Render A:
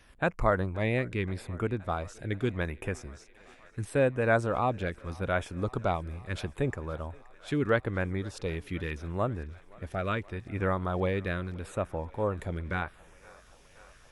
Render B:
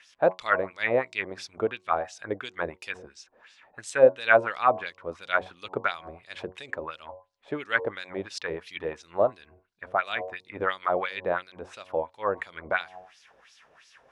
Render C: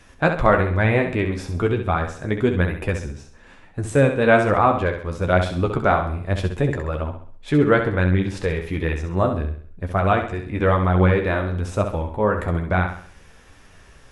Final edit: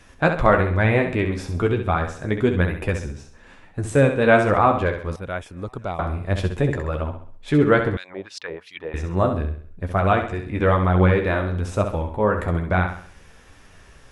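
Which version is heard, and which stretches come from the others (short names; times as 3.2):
C
5.16–5.99 from A
7.97–8.94 from B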